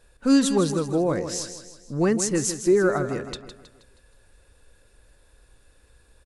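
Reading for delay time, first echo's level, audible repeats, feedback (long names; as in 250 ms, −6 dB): 159 ms, −10.0 dB, 4, 45%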